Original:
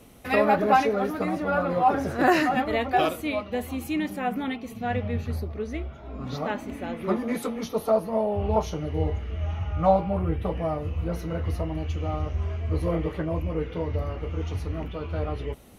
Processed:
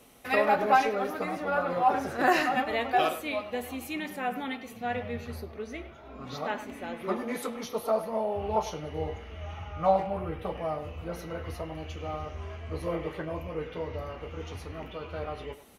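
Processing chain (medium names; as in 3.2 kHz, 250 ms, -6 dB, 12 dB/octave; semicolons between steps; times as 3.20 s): bass shelf 290 Hz -11 dB; speakerphone echo 100 ms, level -12 dB; reverberation, pre-delay 3 ms, DRR 11.5 dB; trim -1.5 dB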